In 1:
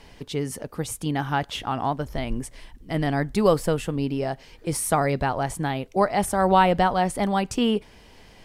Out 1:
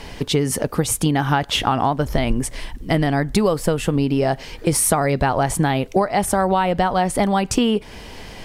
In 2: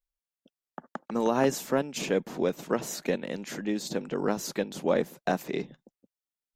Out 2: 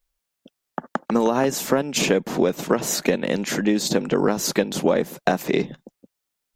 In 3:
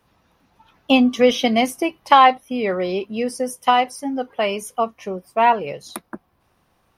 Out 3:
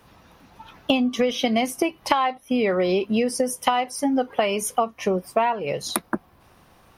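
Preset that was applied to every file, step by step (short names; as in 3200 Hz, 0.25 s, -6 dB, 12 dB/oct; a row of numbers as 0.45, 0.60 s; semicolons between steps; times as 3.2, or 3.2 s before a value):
compressor 20:1, threshold -27 dBFS; normalise peaks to -3 dBFS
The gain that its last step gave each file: +13.5, +12.5, +9.5 dB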